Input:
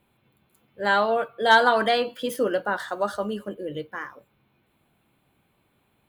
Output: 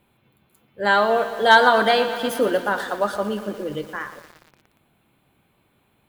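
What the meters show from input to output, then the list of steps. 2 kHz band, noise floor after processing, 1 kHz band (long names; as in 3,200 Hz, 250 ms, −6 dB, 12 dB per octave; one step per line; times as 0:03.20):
+4.0 dB, −65 dBFS, +4.0 dB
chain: feedback echo at a low word length 117 ms, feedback 80%, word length 7 bits, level −13 dB
level +3.5 dB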